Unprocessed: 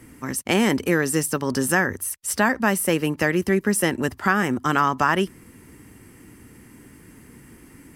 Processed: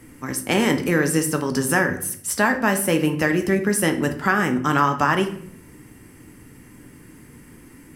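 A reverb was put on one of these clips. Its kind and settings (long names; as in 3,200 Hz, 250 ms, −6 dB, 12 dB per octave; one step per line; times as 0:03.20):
rectangular room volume 96 cubic metres, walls mixed, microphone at 0.41 metres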